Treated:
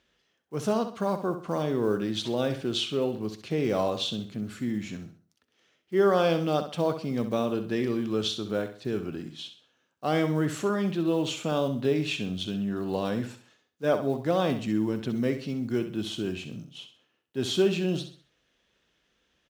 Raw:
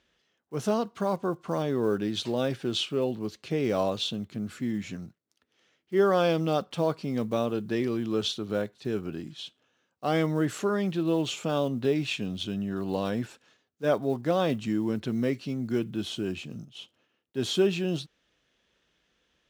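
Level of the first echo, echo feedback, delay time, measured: -10.0 dB, 36%, 65 ms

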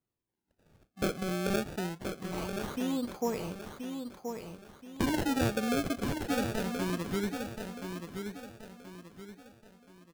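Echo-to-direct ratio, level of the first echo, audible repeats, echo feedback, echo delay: -6.0 dB, -6.5 dB, 4, 37%, 1.027 s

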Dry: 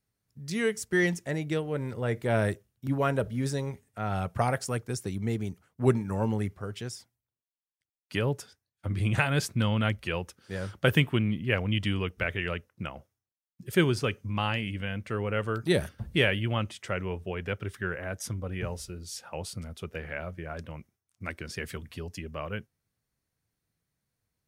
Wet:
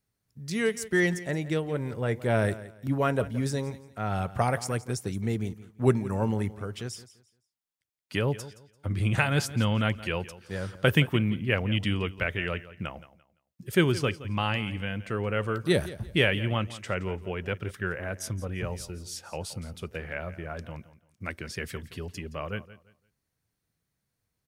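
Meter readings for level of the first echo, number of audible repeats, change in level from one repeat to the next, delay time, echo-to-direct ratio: -16.5 dB, 2, -11.5 dB, 0.171 s, -16.0 dB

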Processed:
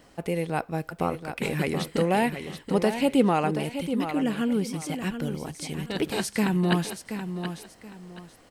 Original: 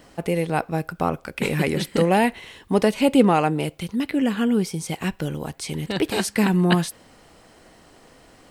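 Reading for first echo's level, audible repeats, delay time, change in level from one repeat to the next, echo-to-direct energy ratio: -9.0 dB, 2, 0.728 s, -11.5 dB, -8.5 dB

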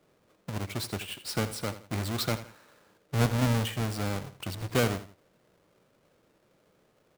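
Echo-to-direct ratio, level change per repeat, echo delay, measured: -13.0 dB, -9.0 dB, 82 ms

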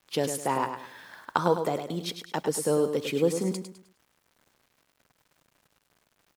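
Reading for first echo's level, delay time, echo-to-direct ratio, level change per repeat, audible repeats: -8.0 dB, 0.103 s, -7.5 dB, -9.5 dB, 3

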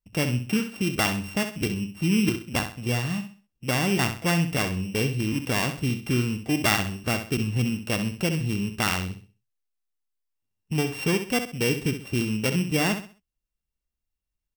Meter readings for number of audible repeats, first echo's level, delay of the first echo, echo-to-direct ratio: 3, -9.0 dB, 65 ms, -8.5 dB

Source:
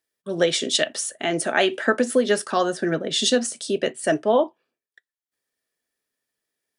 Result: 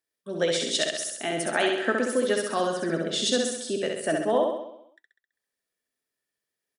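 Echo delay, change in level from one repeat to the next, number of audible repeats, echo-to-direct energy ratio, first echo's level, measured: 66 ms, -5.0 dB, 7, -2.0 dB, -3.5 dB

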